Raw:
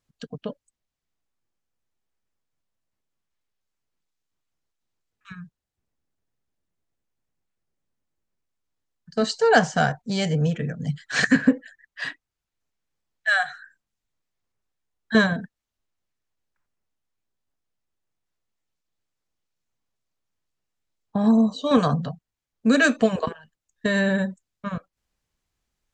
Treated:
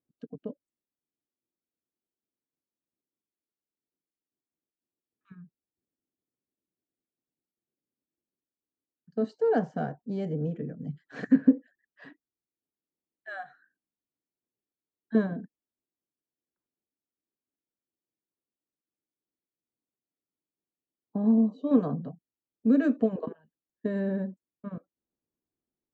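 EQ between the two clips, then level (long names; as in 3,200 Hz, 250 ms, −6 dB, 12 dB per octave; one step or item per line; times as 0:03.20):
resonant band-pass 310 Hz, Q 2
0.0 dB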